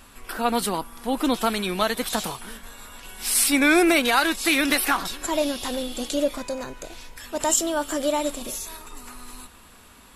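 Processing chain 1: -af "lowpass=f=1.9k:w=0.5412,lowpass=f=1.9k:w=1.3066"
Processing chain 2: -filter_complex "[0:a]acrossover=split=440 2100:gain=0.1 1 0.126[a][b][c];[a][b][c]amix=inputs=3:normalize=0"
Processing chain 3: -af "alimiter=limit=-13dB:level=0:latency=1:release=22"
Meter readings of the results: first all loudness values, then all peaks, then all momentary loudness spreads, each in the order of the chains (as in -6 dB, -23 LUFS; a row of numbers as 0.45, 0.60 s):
-25.0, -28.5, -25.0 LUFS; -9.0, -10.0, -13.0 dBFS; 23, 23, 20 LU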